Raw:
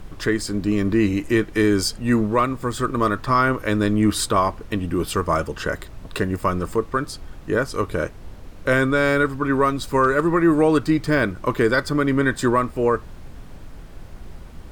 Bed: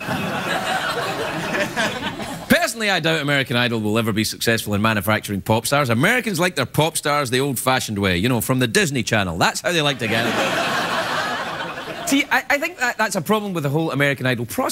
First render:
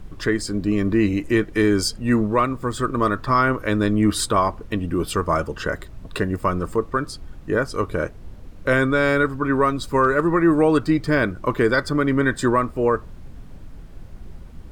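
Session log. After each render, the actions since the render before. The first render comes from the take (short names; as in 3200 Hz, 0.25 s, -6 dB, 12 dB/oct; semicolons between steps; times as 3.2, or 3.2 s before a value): denoiser 6 dB, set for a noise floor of -40 dBFS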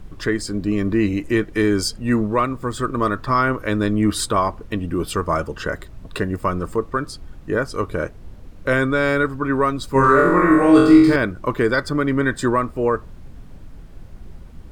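9.93–11.16 flutter echo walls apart 3.8 m, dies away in 0.88 s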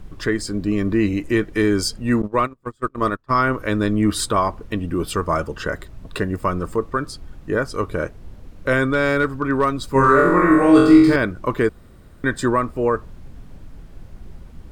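2.22–3.46 gate -22 dBFS, range -31 dB; 8.85–9.82 hard clip -10 dBFS; 11.69–12.24 room tone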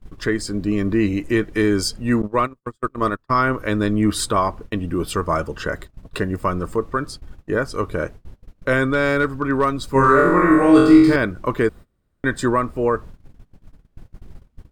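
gate -34 dBFS, range -24 dB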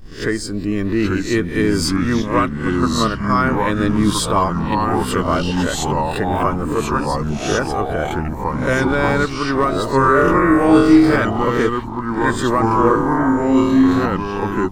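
spectral swells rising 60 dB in 0.35 s; echoes that change speed 0.785 s, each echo -3 st, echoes 3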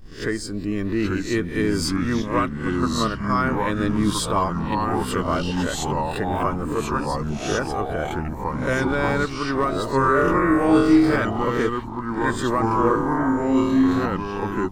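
gain -5 dB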